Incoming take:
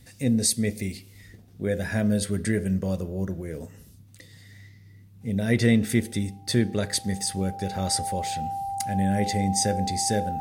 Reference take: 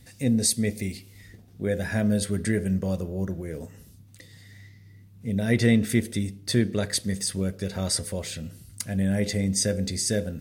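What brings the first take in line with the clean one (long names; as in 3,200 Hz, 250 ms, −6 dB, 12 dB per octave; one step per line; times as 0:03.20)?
notch filter 790 Hz, Q 30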